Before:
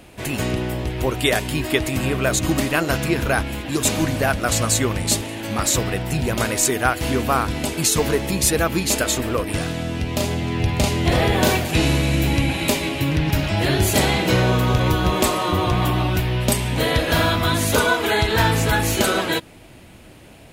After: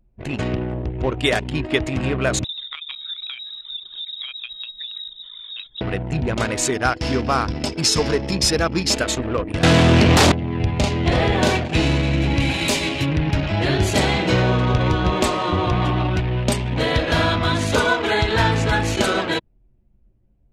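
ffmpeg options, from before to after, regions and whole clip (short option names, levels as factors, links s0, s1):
-filter_complex "[0:a]asettb=1/sr,asplit=3[s0][s1][s2];[s0]atrim=end=2.444[s3];[s1]atrim=start=2.44:end=5.81,asetpts=PTS-STARTPTS,afade=t=in:d=0.004:c=qsin,afade=t=out:st=3.366:d=0.004:c=qsin,acompressor=threshold=0.0562:ratio=4:attack=3.2:release=140:knee=1:detection=peak,lowpass=f=3300:t=q:w=0.5098,lowpass=f=3300:t=q:w=0.6013,lowpass=f=3300:t=q:w=0.9,lowpass=f=3300:t=q:w=2.563,afreqshift=-3900[s4];[s2]atrim=start=5.806[s5];[s3][s4]acrossfade=d=0.004:c1=hsin:c2=qsin[s6];[s6][s5]acrossfade=d=0.004:c1=qsin:c2=hsin,asettb=1/sr,asplit=3[s7][s8][s9];[s7]atrim=end=6.744[s10];[s8]atrim=start=6.74:end=8.94,asetpts=PTS-STARTPTS,afade=t=in:d=0.004:c=qsin,afade=t=out:st=2.196:d=0.004:c=qsin,equalizer=f=5200:t=o:w=0.22:g=14,acrusher=bits=9:dc=4:mix=0:aa=0.000001,asoftclip=type=hard:threshold=0.335[s11];[s9]atrim=start=8.936[s12];[s10][s11]acrossfade=d=0.004:c1=hsin:c2=qsin[s13];[s13][s12]acrossfade=d=0.004:c1=qsin:c2=hsin,asettb=1/sr,asplit=3[s14][s15][s16];[s14]atrim=end=9.634[s17];[s15]atrim=start=9.63:end=10.32,asetpts=PTS-STARTPTS,afade=t=in:d=0.004:c=qsin,afade=t=out:st=0.686:d=0.004:c=qsin,asubboost=boost=7.5:cutoff=160,aeval=exprs='0.398*sin(PI/2*4.47*val(0)/0.398)':c=same,highpass=90[s18];[s16]atrim=start=10.316[s19];[s17][s18]acrossfade=d=0.004:c1=hsin:c2=qsin[s20];[s20][s19]acrossfade=d=0.004:c1=qsin:c2=hsin,asettb=1/sr,asplit=3[s21][s22][s23];[s21]atrim=end=12.404[s24];[s22]atrim=start=12.4:end=13.06,asetpts=PTS-STARTPTS,afade=t=in:d=0.004:c=qsin,afade=t=out:st=0.656:d=0.004:c=qsin,highshelf=f=3200:g=8.5,asoftclip=type=hard:threshold=0.237[s25];[s23]atrim=start=13.056[s26];[s24][s25]acrossfade=d=0.004:c1=hsin:c2=qsin[s27];[s27][s26]acrossfade=d=0.004:c1=qsin:c2=hsin,lowpass=7000,anlmdn=398"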